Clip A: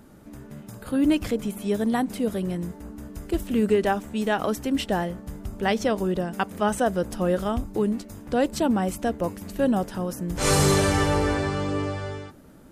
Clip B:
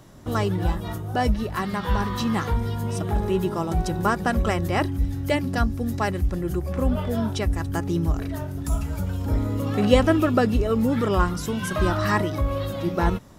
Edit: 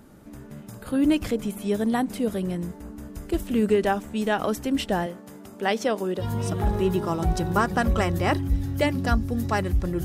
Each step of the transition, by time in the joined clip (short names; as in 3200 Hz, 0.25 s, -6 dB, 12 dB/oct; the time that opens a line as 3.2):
clip A
5.06–6.24 HPF 240 Hz 12 dB/oct
6.21 switch to clip B from 2.7 s, crossfade 0.06 s